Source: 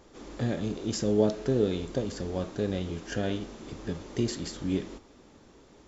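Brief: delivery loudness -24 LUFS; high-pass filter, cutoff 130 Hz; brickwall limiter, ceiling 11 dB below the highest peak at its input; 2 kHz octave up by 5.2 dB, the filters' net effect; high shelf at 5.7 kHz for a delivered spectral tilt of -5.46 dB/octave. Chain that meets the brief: high-pass 130 Hz; peaking EQ 2 kHz +7.5 dB; treble shelf 5.7 kHz -7 dB; trim +10.5 dB; peak limiter -11 dBFS

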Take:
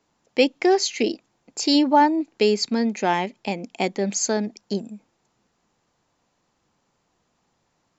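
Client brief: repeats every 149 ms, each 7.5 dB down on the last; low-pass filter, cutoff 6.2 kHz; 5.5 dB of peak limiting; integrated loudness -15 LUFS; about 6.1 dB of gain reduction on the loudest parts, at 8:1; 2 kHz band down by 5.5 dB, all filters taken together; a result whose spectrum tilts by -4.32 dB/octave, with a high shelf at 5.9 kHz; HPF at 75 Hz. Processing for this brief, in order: high-pass 75 Hz; low-pass 6.2 kHz; peaking EQ 2 kHz -6.5 dB; treble shelf 5.9 kHz -4.5 dB; compression 8:1, threshold -19 dBFS; peak limiter -16.5 dBFS; feedback delay 149 ms, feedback 42%, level -7.5 dB; trim +12 dB

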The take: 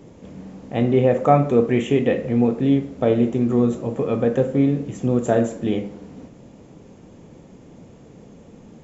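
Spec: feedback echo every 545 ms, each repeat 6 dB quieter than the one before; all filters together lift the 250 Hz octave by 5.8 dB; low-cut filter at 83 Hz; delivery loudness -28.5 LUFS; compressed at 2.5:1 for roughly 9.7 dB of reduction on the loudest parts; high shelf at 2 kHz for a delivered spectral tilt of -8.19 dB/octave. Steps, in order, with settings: high-pass 83 Hz; peaking EQ 250 Hz +6.5 dB; treble shelf 2 kHz -6 dB; compression 2.5:1, threshold -23 dBFS; feedback delay 545 ms, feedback 50%, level -6 dB; trim -5 dB

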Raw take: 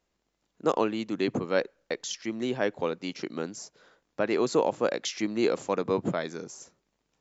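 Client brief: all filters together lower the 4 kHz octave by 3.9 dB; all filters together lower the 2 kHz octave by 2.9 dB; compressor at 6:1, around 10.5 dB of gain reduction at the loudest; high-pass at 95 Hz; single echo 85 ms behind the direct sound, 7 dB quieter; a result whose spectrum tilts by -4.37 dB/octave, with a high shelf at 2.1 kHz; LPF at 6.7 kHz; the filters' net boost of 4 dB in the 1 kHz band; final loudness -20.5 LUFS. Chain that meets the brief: high-pass 95 Hz; low-pass 6.7 kHz; peaking EQ 1 kHz +6 dB; peaking EQ 2 kHz -7 dB; treble shelf 2.1 kHz +4 dB; peaking EQ 4 kHz -6.5 dB; compression 6:1, threshold -30 dBFS; delay 85 ms -7 dB; trim +15 dB

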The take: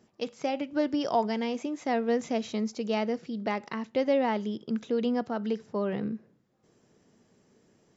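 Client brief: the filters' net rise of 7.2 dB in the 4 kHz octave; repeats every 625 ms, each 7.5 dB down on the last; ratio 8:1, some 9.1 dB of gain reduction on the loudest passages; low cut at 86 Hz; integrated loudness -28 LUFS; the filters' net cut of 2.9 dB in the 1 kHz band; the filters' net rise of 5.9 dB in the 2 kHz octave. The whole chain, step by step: high-pass 86 Hz; peaking EQ 1 kHz -5.5 dB; peaking EQ 2 kHz +6 dB; peaking EQ 4 kHz +8 dB; compression 8:1, threshold -31 dBFS; feedback delay 625 ms, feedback 42%, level -7.5 dB; trim +8 dB

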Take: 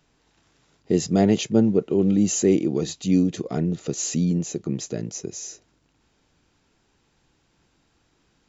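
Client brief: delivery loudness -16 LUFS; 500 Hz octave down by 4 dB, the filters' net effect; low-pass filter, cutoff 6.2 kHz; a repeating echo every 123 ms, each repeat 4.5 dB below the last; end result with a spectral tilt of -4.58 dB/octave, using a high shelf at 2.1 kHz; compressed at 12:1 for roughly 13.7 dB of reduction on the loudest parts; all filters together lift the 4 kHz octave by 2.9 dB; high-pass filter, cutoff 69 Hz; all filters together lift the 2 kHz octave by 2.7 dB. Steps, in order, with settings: high-pass 69 Hz; low-pass 6.2 kHz; peaking EQ 500 Hz -5.5 dB; peaking EQ 2 kHz +4 dB; treble shelf 2.1 kHz -5 dB; peaking EQ 4 kHz +8.5 dB; compression 12:1, threshold -29 dBFS; feedback delay 123 ms, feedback 60%, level -4.5 dB; trim +17 dB

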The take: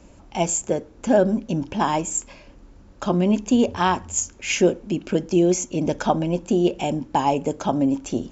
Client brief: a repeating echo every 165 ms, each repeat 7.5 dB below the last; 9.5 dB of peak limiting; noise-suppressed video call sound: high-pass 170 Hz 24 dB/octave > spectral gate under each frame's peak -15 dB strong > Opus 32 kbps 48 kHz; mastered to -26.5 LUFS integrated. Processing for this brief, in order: peak limiter -15 dBFS; high-pass 170 Hz 24 dB/octave; feedback delay 165 ms, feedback 42%, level -7.5 dB; spectral gate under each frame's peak -15 dB strong; trim -0.5 dB; Opus 32 kbps 48 kHz

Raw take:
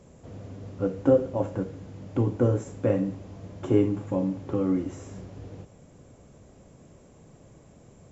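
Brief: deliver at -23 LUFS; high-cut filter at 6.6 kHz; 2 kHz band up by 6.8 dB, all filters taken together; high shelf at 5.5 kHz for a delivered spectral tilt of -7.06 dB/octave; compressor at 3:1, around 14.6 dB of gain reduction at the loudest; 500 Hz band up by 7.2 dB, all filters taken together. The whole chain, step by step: low-pass 6.6 kHz; peaking EQ 500 Hz +7.5 dB; peaking EQ 2 kHz +7.5 dB; treble shelf 5.5 kHz +7.5 dB; compression 3:1, threshold -28 dBFS; trim +10 dB

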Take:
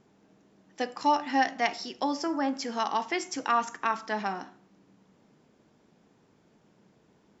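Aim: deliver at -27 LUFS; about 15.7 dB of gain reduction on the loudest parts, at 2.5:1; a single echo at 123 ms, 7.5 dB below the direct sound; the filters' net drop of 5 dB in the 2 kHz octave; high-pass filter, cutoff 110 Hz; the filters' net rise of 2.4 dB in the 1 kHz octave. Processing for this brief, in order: high-pass 110 Hz; peaking EQ 1 kHz +4.5 dB; peaking EQ 2 kHz -7.5 dB; compression 2.5:1, threshold -42 dBFS; delay 123 ms -7.5 dB; trim +13.5 dB

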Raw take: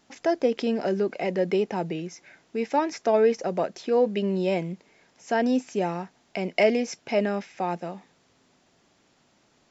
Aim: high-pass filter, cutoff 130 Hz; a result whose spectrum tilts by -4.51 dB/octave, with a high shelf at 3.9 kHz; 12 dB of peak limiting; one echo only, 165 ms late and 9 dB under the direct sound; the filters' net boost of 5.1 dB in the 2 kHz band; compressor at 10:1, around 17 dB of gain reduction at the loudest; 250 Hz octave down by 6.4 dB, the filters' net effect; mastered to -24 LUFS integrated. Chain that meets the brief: high-pass 130 Hz; peaking EQ 250 Hz -8 dB; peaking EQ 2 kHz +7 dB; treble shelf 3.9 kHz -4 dB; compression 10:1, threshold -32 dBFS; peak limiter -29 dBFS; delay 165 ms -9 dB; trim +15.5 dB

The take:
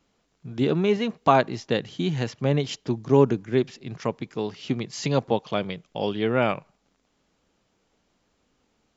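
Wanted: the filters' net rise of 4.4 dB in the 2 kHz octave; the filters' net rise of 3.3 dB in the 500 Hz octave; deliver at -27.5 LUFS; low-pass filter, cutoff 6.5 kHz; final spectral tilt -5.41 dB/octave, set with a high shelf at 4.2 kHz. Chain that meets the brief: low-pass 6.5 kHz; peaking EQ 500 Hz +4 dB; peaking EQ 2 kHz +7 dB; treble shelf 4.2 kHz -6.5 dB; trim -4.5 dB

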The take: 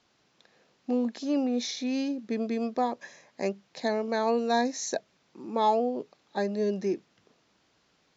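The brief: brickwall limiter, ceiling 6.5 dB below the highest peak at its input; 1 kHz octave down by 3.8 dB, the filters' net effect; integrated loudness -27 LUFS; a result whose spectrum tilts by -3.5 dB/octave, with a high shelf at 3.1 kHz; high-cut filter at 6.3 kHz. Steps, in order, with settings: low-pass 6.3 kHz; peaking EQ 1 kHz -6 dB; treble shelf 3.1 kHz +9 dB; trim +4.5 dB; peak limiter -16.5 dBFS

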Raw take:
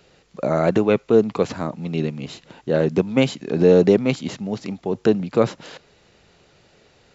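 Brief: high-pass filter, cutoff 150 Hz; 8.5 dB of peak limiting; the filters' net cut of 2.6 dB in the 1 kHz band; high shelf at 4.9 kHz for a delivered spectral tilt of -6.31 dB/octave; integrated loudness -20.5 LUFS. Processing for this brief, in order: high-pass 150 Hz; peaking EQ 1 kHz -3.5 dB; treble shelf 4.9 kHz -5 dB; trim +5 dB; peak limiter -7.5 dBFS

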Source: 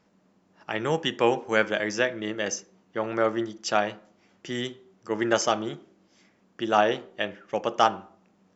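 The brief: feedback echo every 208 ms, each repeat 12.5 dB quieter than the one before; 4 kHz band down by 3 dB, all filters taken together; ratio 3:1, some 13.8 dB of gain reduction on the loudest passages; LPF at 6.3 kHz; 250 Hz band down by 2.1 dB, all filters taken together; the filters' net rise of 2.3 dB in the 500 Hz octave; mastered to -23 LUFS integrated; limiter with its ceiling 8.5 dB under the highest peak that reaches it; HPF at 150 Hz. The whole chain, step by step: high-pass 150 Hz; low-pass 6.3 kHz; peaking EQ 250 Hz -5 dB; peaking EQ 500 Hz +4 dB; peaking EQ 4 kHz -4 dB; compression 3:1, threshold -34 dBFS; peak limiter -26.5 dBFS; feedback delay 208 ms, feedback 24%, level -12.5 dB; trim +16.5 dB

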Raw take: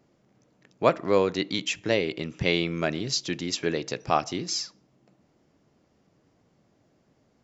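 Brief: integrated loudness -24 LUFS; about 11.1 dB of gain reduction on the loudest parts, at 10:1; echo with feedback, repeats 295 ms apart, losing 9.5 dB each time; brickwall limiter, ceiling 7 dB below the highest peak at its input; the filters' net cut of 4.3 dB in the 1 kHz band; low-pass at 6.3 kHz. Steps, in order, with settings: low-pass 6.3 kHz; peaking EQ 1 kHz -6 dB; compression 10:1, threshold -28 dBFS; peak limiter -22 dBFS; feedback delay 295 ms, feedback 33%, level -9.5 dB; trim +11 dB

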